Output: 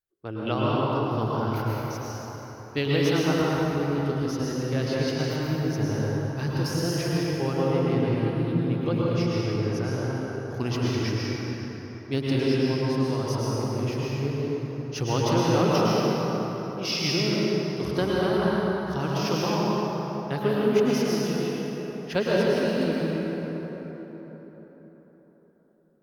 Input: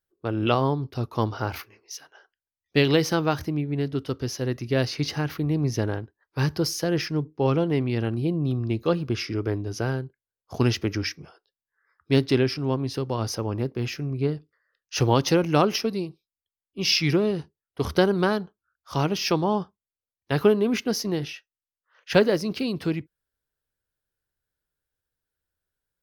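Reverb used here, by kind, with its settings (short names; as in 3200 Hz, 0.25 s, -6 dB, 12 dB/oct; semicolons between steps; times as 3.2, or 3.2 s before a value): plate-style reverb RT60 4.5 s, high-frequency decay 0.5×, pre-delay 95 ms, DRR -6 dB; gain -7.5 dB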